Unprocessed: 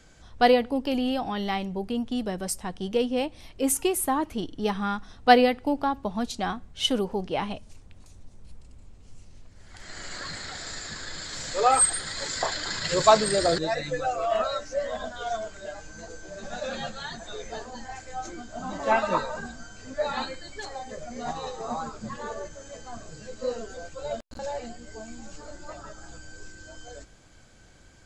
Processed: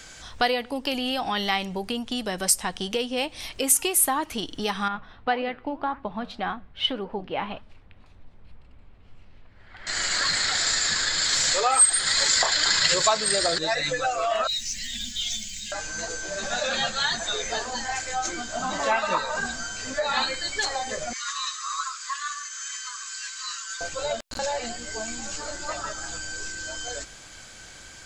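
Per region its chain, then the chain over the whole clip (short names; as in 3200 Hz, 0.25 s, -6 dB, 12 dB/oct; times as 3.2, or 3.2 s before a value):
4.88–9.87 flange 1.8 Hz, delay 3 ms, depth 8.3 ms, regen +85% + air absorption 450 m
14.47–15.72 inverse Chebyshev band-stop 360–1400 Hz + modulation noise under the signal 29 dB + comb 4.2 ms, depth 30%
21.13–23.81 dynamic EQ 2100 Hz, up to -5 dB, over -47 dBFS, Q 0.7 + brick-wall FIR high-pass 1000 Hz
whole clip: compressor 3:1, threshold -33 dBFS; tilt shelf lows -7 dB, about 820 Hz; gain +9 dB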